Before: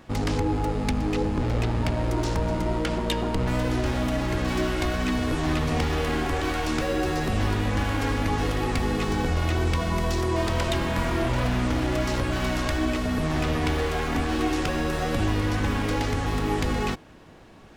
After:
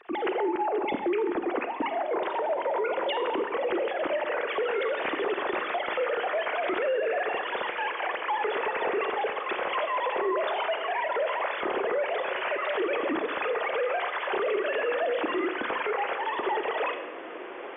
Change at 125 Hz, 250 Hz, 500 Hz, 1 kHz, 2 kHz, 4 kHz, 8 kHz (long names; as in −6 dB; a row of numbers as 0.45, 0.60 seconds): below −30 dB, −9.5 dB, +2.0 dB, +1.5 dB, +0.5 dB, −4.5 dB, below −40 dB